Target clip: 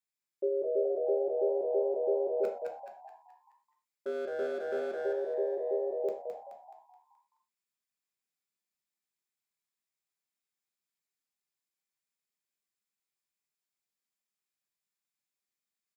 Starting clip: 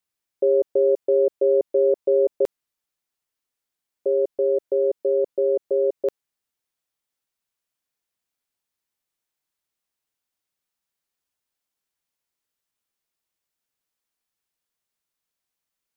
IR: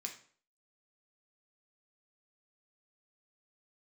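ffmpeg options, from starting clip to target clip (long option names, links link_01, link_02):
-filter_complex "[0:a]asplit=3[link_01][link_02][link_03];[link_01]afade=type=out:start_time=2.43:duration=0.02[link_04];[link_02]volume=18.5dB,asoftclip=hard,volume=-18.5dB,afade=type=in:start_time=2.43:duration=0.02,afade=type=out:start_time=4.92:duration=0.02[link_05];[link_03]afade=type=in:start_time=4.92:duration=0.02[link_06];[link_04][link_05][link_06]amix=inputs=3:normalize=0,asplit=7[link_07][link_08][link_09][link_10][link_11][link_12][link_13];[link_08]adelay=213,afreqshift=83,volume=-3.5dB[link_14];[link_09]adelay=426,afreqshift=166,volume=-10.6dB[link_15];[link_10]adelay=639,afreqshift=249,volume=-17.8dB[link_16];[link_11]adelay=852,afreqshift=332,volume=-24.9dB[link_17];[link_12]adelay=1065,afreqshift=415,volume=-32dB[link_18];[link_13]adelay=1278,afreqshift=498,volume=-39.2dB[link_19];[link_07][link_14][link_15][link_16][link_17][link_18][link_19]amix=inputs=7:normalize=0[link_20];[1:a]atrim=start_sample=2205,afade=type=out:start_time=0.18:duration=0.01,atrim=end_sample=8379[link_21];[link_20][link_21]afir=irnorm=-1:irlink=0,volume=-7dB"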